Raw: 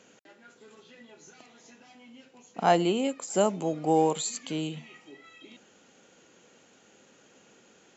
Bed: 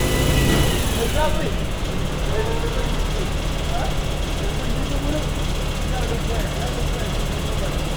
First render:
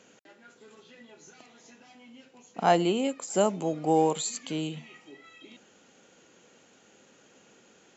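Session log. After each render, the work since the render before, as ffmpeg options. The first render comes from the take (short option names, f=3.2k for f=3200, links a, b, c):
-af anull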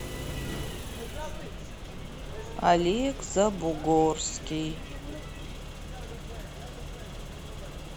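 -filter_complex "[1:a]volume=-17.5dB[a];[0:a][a]amix=inputs=2:normalize=0"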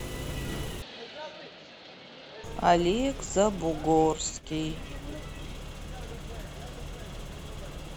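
-filter_complex "[0:a]asettb=1/sr,asplit=3[a][b][c];[a]atrim=end=0.824[d];[b]atrim=start=0.82:end=2.44,asetpts=PTS-STARTPTS,afade=t=in:d=0.004:c=qsin,afade=t=out:st=1.616:d=0.004:c=qsin,highpass=340,equalizer=f=390:t=q:w=4:g=-6,equalizer=f=1.1k:t=q:w=4:g=-8,equalizer=f=4.3k:t=q:w=4:g=9,lowpass=f=4.7k:w=0.5412,lowpass=f=4.7k:w=1.3066[e];[c]atrim=start=2.436[f];[d][e]acrossfade=d=0.004:c1=hsin:c2=qsin[g];[g][f]acrossfade=d=0.004:c1=qsin:c2=hsin,asettb=1/sr,asplit=3[h][i][j];[h]atrim=end=4.044[k];[i]atrim=start=4.04:end=4.6,asetpts=PTS-STARTPTS,afade=t=in:d=0.004:c=qsin,afade=t=out:st=0.556:d=0.004:c=qsin,agate=range=-33dB:threshold=-32dB:ratio=3:release=100:detection=peak[l];[j]atrim=start=4.596[m];[k][l]acrossfade=d=0.004:c1=hsin:c2=qsin[n];[n][m]acrossfade=d=0.004:c1=qsin:c2=hsin"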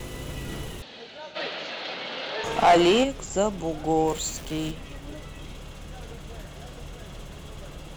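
-filter_complex "[0:a]asplit=3[a][b][c];[a]afade=t=out:st=1.35:d=0.02[d];[b]asplit=2[e][f];[f]highpass=f=720:p=1,volume=23dB,asoftclip=type=tanh:threshold=-8.5dB[g];[e][g]amix=inputs=2:normalize=0,lowpass=f=3.4k:p=1,volume=-6dB,afade=t=in:st=1.35:d=0.02,afade=t=out:st=3.03:d=0.02[h];[c]afade=t=in:st=3.03:d=0.02[i];[d][h][i]amix=inputs=3:normalize=0,asettb=1/sr,asplit=3[j][k][l];[j]atrim=end=4.074[m];[k]atrim=start=4.07:end=4.71,asetpts=PTS-STARTPTS,afade=t=in:d=0.004:c=qsin,afade=t=out:st=0.636:d=0.004:c=qsin,aeval=exprs='val(0)+0.5*0.0178*sgn(val(0))':c=same[n];[l]atrim=start=4.706[o];[m][n]acrossfade=d=0.004:c1=hsin:c2=qsin[p];[p][o]acrossfade=d=0.004:c1=qsin:c2=hsin"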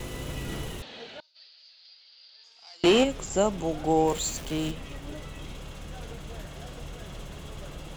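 -filter_complex "[0:a]asettb=1/sr,asplit=3[a][b][c];[a]atrim=end=1.204[d];[b]atrim=start=1.2:end=2.84,asetpts=PTS-STARTPTS,afade=t=in:d=0.004:c=qsin,afade=t=out:st=1.636:d=0.004:c=qsin,bandpass=f=4.8k:t=q:w=18[e];[c]atrim=start=2.836[f];[d][e]acrossfade=d=0.004:c1=hsin:c2=qsin[g];[g][f]acrossfade=d=0.004:c1=qsin:c2=hsin"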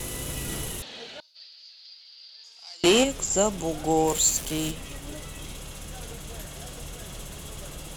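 -af "equalizer=f=11k:t=o:w=1.6:g=15"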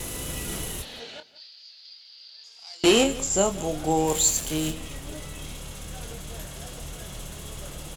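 -filter_complex "[0:a]asplit=2[a][b];[b]adelay=26,volume=-9dB[c];[a][c]amix=inputs=2:normalize=0,asplit=2[d][e];[e]adelay=174.9,volume=-17dB,highshelf=f=4k:g=-3.94[f];[d][f]amix=inputs=2:normalize=0"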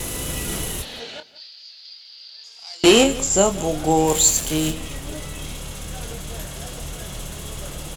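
-af "volume=5.5dB"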